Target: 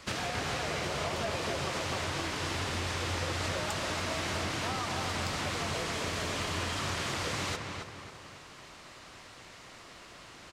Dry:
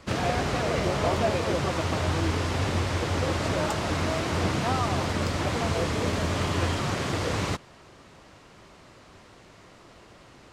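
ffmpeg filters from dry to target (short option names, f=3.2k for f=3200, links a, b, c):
-filter_complex "[0:a]tiltshelf=f=1.1k:g=-5.5,acompressor=threshold=-32dB:ratio=6,asplit=2[a][b];[b]adelay=272,lowpass=f=3.2k:p=1,volume=-4dB,asplit=2[c][d];[d]adelay=272,lowpass=f=3.2k:p=1,volume=0.44,asplit=2[e][f];[f]adelay=272,lowpass=f=3.2k:p=1,volume=0.44,asplit=2[g][h];[h]adelay=272,lowpass=f=3.2k:p=1,volume=0.44,asplit=2[i][j];[j]adelay=272,lowpass=f=3.2k:p=1,volume=0.44,asplit=2[k][l];[l]adelay=272,lowpass=f=3.2k:p=1,volume=0.44[m];[a][c][e][g][i][k][m]amix=inputs=7:normalize=0"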